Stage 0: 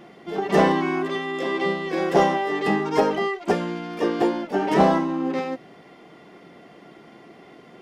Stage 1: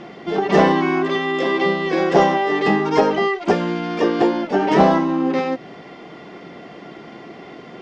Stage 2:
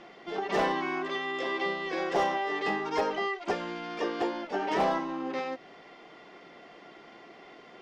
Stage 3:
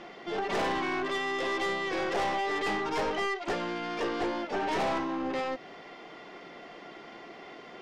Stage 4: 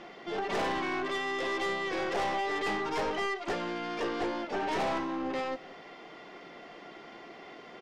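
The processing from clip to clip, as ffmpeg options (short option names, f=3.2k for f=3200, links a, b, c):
-filter_complex "[0:a]lowpass=f=6.5k:w=0.5412,lowpass=f=6.5k:w=1.3066,asplit=2[a][b];[b]acompressor=threshold=-29dB:ratio=6,volume=3dB[c];[a][c]amix=inputs=2:normalize=0,volume=1.5dB"
-af "equalizer=f=140:t=o:w=2.6:g=-12,volume=11dB,asoftclip=hard,volume=-11dB,volume=-9dB"
-af "aeval=exprs='(tanh(35.5*val(0)+0.2)-tanh(0.2))/35.5':c=same,volume=4.5dB"
-af "aecho=1:1:180:0.0891,volume=-1.5dB"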